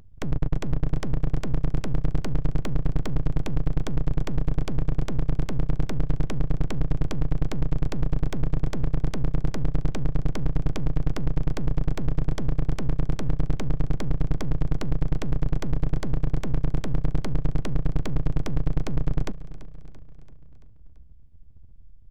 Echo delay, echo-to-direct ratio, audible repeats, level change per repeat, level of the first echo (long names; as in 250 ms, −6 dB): 337 ms, −14.5 dB, 4, −4.5 dB, −16.5 dB